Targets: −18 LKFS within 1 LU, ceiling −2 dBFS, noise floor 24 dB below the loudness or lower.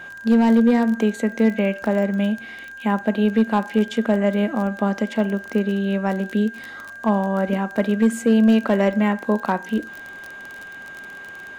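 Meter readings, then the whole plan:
crackle rate 25 per second; interfering tone 1,600 Hz; level of the tone −35 dBFS; integrated loudness −20.5 LKFS; sample peak −8.5 dBFS; target loudness −18.0 LKFS
→ click removal
notch filter 1,600 Hz, Q 30
level +2.5 dB

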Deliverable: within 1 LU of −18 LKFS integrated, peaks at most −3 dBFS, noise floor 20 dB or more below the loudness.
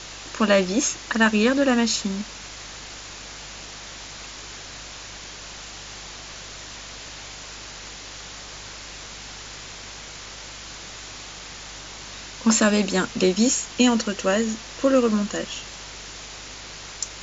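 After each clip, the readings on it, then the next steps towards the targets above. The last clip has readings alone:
mains hum 50 Hz; hum harmonics up to 150 Hz; level of the hum −46 dBFS; background noise floor −39 dBFS; target noise floor −42 dBFS; integrated loudness −21.5 LKFS; sample peak −5.0 dBFS; target loudness −18.0 LKFS
→ hum removal 50 Hz, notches 3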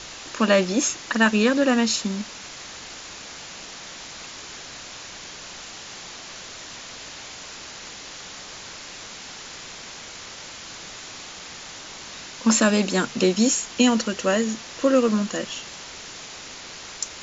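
mains hum none found; background noise floor −40 dBFS; target noise floor −42 dBFS
→ broadband denoise 6 dB, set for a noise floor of −40 dBFS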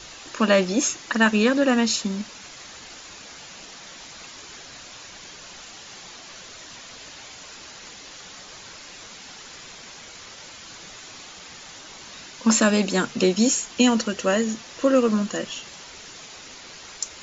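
background noise floor −43 dBFS; integrated loudness −21.5 LKFS; sample peak −5.0 dBFS; target loudness −18.0 LKFS
→ level +3.5 dB
brickwall limiter −3 dBFS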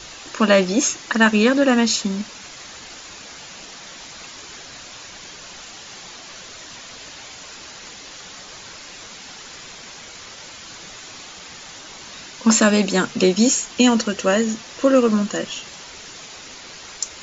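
integrated loudness −18.0 LKFS; sample peak −3.0 dBFS; background noise floor −39 dBFS

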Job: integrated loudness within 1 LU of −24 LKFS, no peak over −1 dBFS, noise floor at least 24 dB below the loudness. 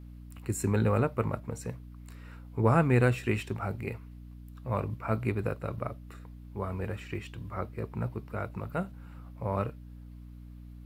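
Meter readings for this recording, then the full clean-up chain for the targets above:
mains hum 60 Hz; hum harmonics up to 300 Hz; level of the hum −45 dBFS; integrated loudness −32.0 LKFS; sample peak −10.5 dBFS; target loudness −24.0 LKFS
→ mains-hum notches 60/120/180/240/300 Hz
level +8 dB

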